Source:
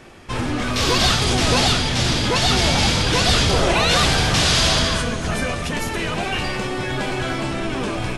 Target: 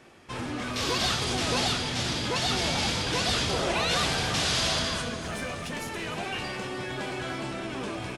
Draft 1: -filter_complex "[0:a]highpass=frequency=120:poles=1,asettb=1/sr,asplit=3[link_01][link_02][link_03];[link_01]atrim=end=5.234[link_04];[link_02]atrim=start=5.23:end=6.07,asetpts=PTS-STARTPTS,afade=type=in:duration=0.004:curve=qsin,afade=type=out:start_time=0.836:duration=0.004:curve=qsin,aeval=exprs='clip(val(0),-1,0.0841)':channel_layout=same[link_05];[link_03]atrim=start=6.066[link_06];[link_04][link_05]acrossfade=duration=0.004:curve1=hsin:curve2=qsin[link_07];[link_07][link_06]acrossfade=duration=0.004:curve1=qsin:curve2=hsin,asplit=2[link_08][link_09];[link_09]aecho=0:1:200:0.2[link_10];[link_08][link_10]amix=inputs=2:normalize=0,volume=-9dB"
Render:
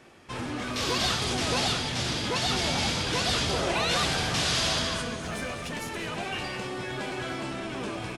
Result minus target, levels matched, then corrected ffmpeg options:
echo 100 ms early
-filter_complex "[0:a]highpass=frequency=120:poles=1,asettb=1/sr,asplit=3[link_01][link_02][link_03];[link_01]atrim=end=5.234[link_04];[link_02]atrim=start=5.23:end=6.07,asetpts=PTS-STARTPTS,afade=type=in:duration=0.004:curve=qsin,afade=type=out:start_time=0.836:duration=0.004:curve=qsin,aeval=exprs='clip(val(0),-1,0.0841)':channel_layout=same[link_05];[link_03]atrim=start=6.066[link_06];[link_04][link_05]acrossfade=duration=0.004:curve1=hsin:curve2=qsin[link_07];[link_07][link_06]acrossfade=duration=0.004:curve1=qsin:curve2=hsin,asplit=2[link_08][link_09];[link_09]aecho=0:1:300:0.2[link_10];[link_08][link_10]amix=inputs=2:normalize=0,volume=-9dB"

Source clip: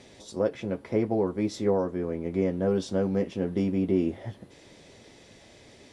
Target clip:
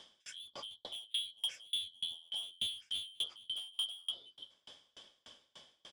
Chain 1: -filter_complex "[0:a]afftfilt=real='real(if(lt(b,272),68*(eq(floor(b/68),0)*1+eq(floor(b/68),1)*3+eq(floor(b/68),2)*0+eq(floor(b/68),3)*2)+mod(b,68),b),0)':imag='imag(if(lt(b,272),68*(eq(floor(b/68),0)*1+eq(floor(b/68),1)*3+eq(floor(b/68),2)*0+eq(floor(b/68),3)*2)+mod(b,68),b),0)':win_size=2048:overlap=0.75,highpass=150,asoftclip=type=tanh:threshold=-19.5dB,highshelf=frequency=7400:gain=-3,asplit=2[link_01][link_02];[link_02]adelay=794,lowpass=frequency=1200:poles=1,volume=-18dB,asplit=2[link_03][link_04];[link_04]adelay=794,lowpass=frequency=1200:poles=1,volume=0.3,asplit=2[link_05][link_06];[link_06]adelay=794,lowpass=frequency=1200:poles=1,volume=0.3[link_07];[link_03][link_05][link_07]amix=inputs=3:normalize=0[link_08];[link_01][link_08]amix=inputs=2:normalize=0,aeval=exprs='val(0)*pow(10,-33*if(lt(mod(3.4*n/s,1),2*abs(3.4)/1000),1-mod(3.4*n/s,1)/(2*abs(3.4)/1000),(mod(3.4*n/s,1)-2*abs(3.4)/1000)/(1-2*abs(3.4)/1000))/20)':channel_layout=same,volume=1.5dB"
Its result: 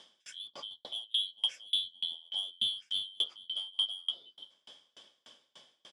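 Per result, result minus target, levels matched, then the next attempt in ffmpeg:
125 Hz band −6.5 dB; soft clipping: distortion −9 dB
-filter_complex "[0:a]afftfilt=real='real(if(lt(b,272),68*(eq(floor(b/68),0)*1+eq(floor(b/68),1)*3+eq(floor(b/68),2)*0+eq(floor(b/68),3)*2)+mod(b,68),b),0)':imag='imag(if(lt(b,272),68*(eq(floor(b/68),0)*1+eq(floor(b/68),1)*3+eq(floor(b/68),2)*0+eq(floor(b/68),3)*2)+mod(b,68),b),0)':win_size=2048:overlap=0.75,asoftclip=type=tanh:threshold=-19.5dB,highshelf=frequency=7400:gain=-3,asplit=2[link_01][link_02];[link_02]adelay=794,lowpass=frequency=1200:poles=1,volume=-18dB,asplit=2[link_03][link_04];[link_04]adelay=794,lowpass=frequency=1200:poles=1,volume=0.3,asplit=2[link_05][link_06];[link_06]adelay=794,lowpass=frequency=1200:poles=1,volume=0.3[link_07];[link_03][link_05][link_07]amix=inputs=3:normalize=0[link_08];[link_01][link_08]amix=inputs=2:normalize=0,aeval=exprs='val(0)*pow(10,-33*if(lt(mod(3.4*n/s,1),2*abs(3.4)/1000),1-mod(3.4*n/s,1)/(2*abs(3.4)/1000),(mod(3.4*n/s,1)-2*abs(3.4)/1000)/(1-2*abs(3.4)/1000))/20)':channel_layout=same,volume=1.5dB"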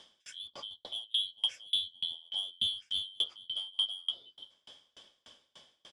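soft clipping: distortion −9 dB
-filter_complex "[0:a]afftfilt=real='real(if(lt(b,272),68*(eq(floor(b/68),0)*1+eq(floor(b/68),1)*3+eq(floor(b/68),2)*0+eq(floor(b/68),3)*2)+mod(b,68),b),0)':imag='imag(if(lt(b,272),68*(eq(floor(b/68),0)*1+eq(floor(b/68),1)*3+eq(floor(b/68),2)*0+eq(floor(b/68),3)*2)+mod(b,68),b),0)':win_size=2048:overlap=0.75,asoftclip=type=tanh:threshold=-30dB,highshelf=frequency=7400:gain=-3,asplit=2[link_01][link_02];[link_02]adelay=794,lowpass=frequency=1200:poles=1,volume=-18dB,asplit=2[link_03][link_04];[link_04]adelay=794,lowpass=frequency=1200:poles=1,volume=0.3,asplit=2[link_05][link_06];[link_06]adelay=794,lowpass=frequency=1200:poles=1,volume=0.3[link_07];[link_03][link_05][link_07]amix=inputs=3:normalize=0[link_08];[link_01][link_08]amix=inputs=2:normalize=0,aeval=exprs='val(0)*pow(10,-33*if(lt(mod(3.4*n/s,1),2*abs(3.4)/1000),1-mod(3.4*n/s,1)/(2*abs(3.4)/1000),(mod(3.4*n/s,1)-2*abs(3.4)/1000)/(1-2*abs(3.4)/1000))/20)':channel_layout=same,volume=1.5dB"

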